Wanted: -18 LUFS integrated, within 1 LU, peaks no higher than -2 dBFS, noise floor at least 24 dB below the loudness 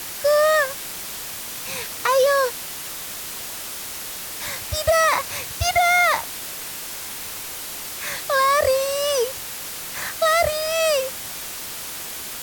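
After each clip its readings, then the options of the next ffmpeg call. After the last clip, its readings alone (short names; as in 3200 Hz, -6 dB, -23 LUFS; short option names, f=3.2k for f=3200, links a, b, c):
noise floor -33 dBFS; noise floor target -47 dBFS; loudness -22.5 LUFS; peak -7.0 dBFS; loudness target -18.0 LUFS
-> -af "afftdn=nr=14:nf=-33"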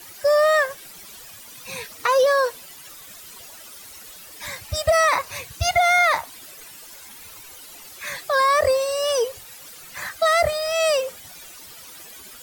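noise floor -43 dBFS; noise floor target -45 dBFS
-> -af "afftdn=nr=6:nf=-43"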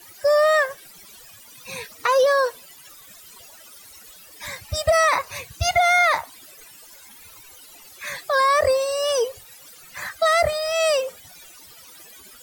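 noise floor -47 dBFS; loudness -20.0 LUFS; peak -7.5 dBFS; loudness target -18.0 LUFS
-> -af "volume=2dB"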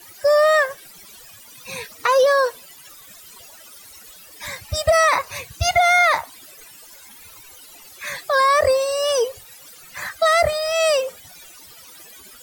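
loudness -18.0 LUFS; peak -5.5 dBFS; noise floor -45 dBFS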